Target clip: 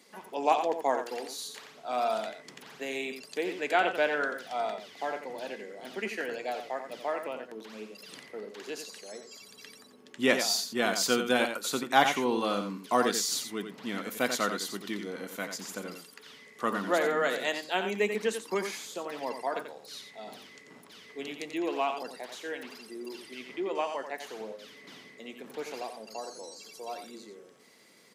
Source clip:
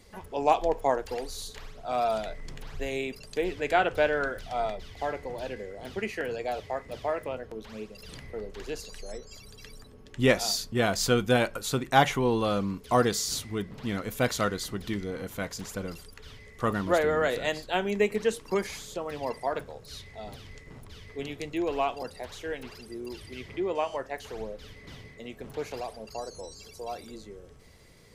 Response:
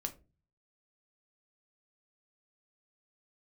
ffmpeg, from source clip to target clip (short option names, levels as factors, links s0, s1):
-filter_complex "[0:a]highpass=f=220:w=0.5412,highpass=f=220:w=1.3066,equalizer=f=480:w=0.98:g=-4,asplit=2[s0][s1];[s1]aecho=0:1:88:0.398[s2];[s0][s2]amix=inputs=2:normalize=0"